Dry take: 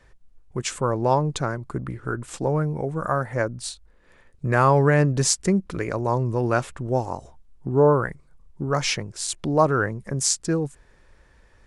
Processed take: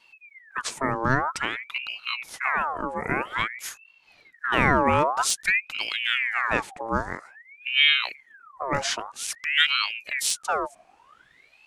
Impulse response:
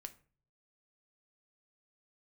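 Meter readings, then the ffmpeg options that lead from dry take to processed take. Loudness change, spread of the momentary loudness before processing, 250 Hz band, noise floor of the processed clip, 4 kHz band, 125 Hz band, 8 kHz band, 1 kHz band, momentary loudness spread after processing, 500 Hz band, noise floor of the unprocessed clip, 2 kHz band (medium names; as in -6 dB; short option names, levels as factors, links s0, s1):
-1.0 dB, 14 LU, -7.5 dB, -59 dBFS, +8.0 dB, -12.5 dB, -4.0 dB, -0.5 dB, 13 LU, -8.5 dB, -56 dBFS, +7.0 dB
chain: -af "aeval=exprs='0.501*(abs(mod(val(0)/0.501+3,4)-2)-1)':c=same,aeval=exprs='val(0)*sin(2*PI*1700*n/s+1700*0.6/0.51*sin(2*PI*0.51*n/s))':c=same"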